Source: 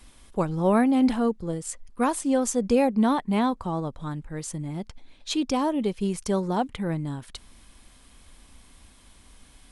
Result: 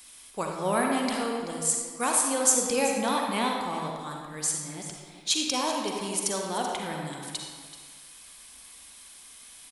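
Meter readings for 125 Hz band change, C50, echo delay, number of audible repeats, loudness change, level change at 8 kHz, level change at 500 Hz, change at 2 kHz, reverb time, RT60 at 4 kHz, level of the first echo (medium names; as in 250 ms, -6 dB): -10.0 dB, 0.5 dB, 383 ms, 1, -1.5 dB, +10.5 dB, -3.5 dB, +3.5 dB, 1.7 s, 1.3 s, -13.0 dB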